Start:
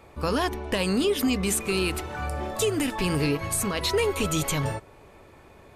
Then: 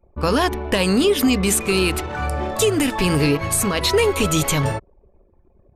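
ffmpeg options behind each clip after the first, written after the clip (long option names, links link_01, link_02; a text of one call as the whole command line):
ffmpeg -i in.wav -af "anlmdn=0.251,volume=7dB" out.wav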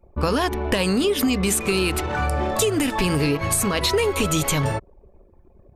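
ffmpeg -i in.wav -af "acompressor=threshold=-23dB:ratio=3,volume=3.5dB" out.wav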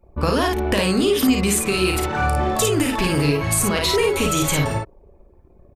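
ffmpeg -i in.wav -af "aecho=1:1:35|54:0.335|0.668" out.wav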